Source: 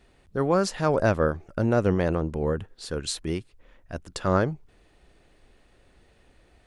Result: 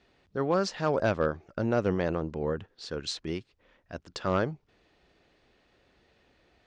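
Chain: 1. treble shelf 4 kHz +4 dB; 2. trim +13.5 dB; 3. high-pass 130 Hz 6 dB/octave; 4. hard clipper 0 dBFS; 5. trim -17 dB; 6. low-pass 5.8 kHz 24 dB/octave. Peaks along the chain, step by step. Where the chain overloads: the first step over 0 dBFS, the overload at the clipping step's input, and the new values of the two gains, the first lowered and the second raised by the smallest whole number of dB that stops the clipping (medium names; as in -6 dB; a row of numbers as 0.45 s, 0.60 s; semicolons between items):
-8.5 dBFS, +5.0 dBFS, +5.0 dBFS, 0.0 dBFS, -17.0 dBFS, -16.5 dBFS; step 2, 5.0 dB; step 2 +8.5 dB, step 5 -12 dB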